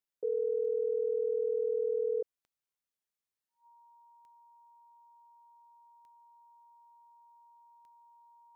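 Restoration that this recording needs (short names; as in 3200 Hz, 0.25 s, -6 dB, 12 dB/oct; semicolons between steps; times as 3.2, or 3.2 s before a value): de-click; notch 940 Hz, Q 30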